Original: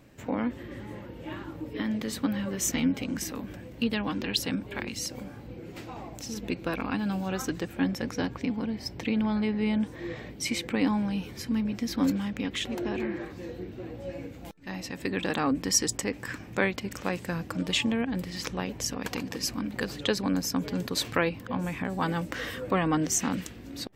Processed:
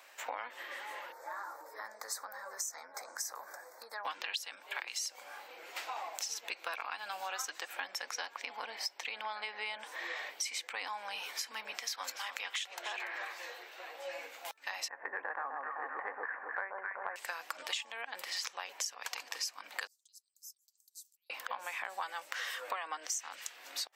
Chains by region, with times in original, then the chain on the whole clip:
1.12–4.05 s: Butterworth band-stop 2.9 kHz, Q 0.8 + peaking EQ 260 Hz -10.5 dB 0.54 oct + compression, threshold -37 dBFS
11.81–13.95 s: Bessel high-pass 500 Hz + delay 288 ms -15.5 dB
14.88–17.16 s: steep low-pass 1.8 kHz 48 dB/octave + band-stop 1.3 kHz, Q 14 + echo whose repeats swap between lows and highs 128 ms, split 1.1 kHz, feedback 68%, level -2.5 dB
19.87–21.30 s: inverse Chebyshev band-stop 100–1600 Hz, stop band 70 dB + amplifier tone stack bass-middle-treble 10-0-1
whole clip: dynamic bell 6.4 kHz, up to +5 dB, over -47 dBFS, Q 1; high-pass 750 Hz 24 dB/octave; compression 10:1, threshold -42 dBFS; trim +6.5 dB

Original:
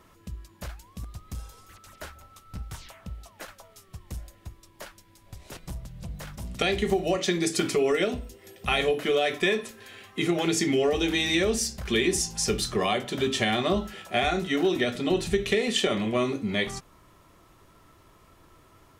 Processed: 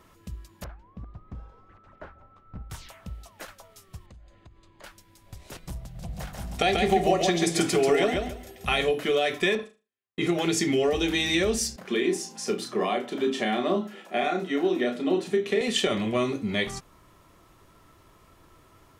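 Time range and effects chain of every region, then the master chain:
0.64–2.70 s: low-pass 1.3 kHz + peaking EQ 70 Hz -5.5 dB 0.9 oct
4.06–4.84 s: distance through air 130 m + compression, threshold -47 dBFS + Butterworth band-stop 5.5 kHz, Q 7
5.81–8.66 s: peaking EQ 740 Hz +10 dB 0.27 oct + feedback delay 139 ms, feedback 23%, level -4 dB
9.55–10.27 s: gate -38 dBFS, range -50 dB + treble shelf 5.3 kHz -11.5 dB + flutter echo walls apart 6.6 m, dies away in 0.29 s
11.76–15.61 s: high-pass 200 Hz 24 dB/octave + treble shelf 2.2 kHz -10 dB + doubling 33 ms -7 dB
whole clip: none

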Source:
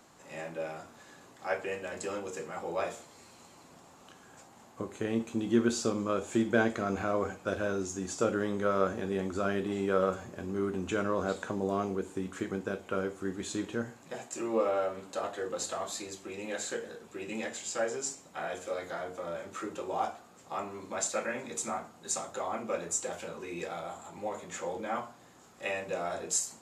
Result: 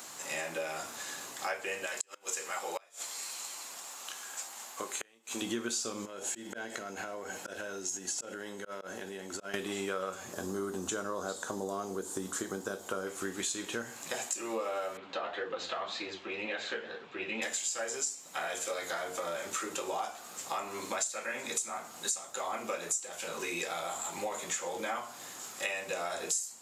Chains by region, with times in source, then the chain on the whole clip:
1.86–5.42 s: high-pass 800 Hz 6 dB/octave + inverted gate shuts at -29 dBFS, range -32 dB
6.05–9.54 s: slow attack 360 ms + compression 20:1, threshold -41 dBFS + comb of notches 1.2 kHz
10.33–13.07 s: high-pass 43 Hz + peaking EQ 2.4 kHz -14.5 dB 0.74 oct
14.97–17.42 s: low-pass 3.5 kHz 24 dB/octave + flange 1.9 Hz, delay 6 ms, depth 8.7 ms, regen +49%
whole clip: tilt EQ +3.5 dB/octave; compression 6:1, threshold -42 dBFS; trim +9 dB

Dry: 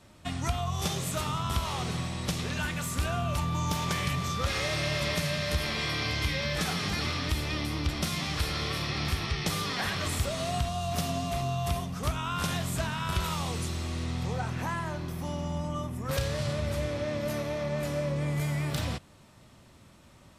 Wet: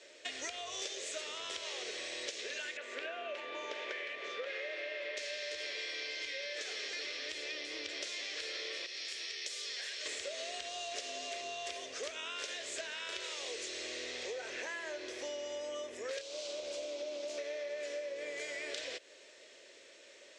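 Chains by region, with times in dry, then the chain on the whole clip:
2.77–5.17 s: three-band isolator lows -18 dB, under 160 Hz, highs -24 dB, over 3 kHz + hum notches 60/120/180/240/300/360/420 Hz
8.86–10.06 s: pre-emphasis filter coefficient 0.8 + band-stop 6.2 kHz, Q 30
16.21–17.38 s: static phaser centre 480 Hz, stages 6 + loudspeaker Doppler distortion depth 0.27 ms
whole clip: elliptic band-pass 430–7100 Hz, stop band 40 dB; high-order bell 1 kHz -15 dB 1.1 oct; compression 10:1, threshold -44 dBFS; trim +6 dB

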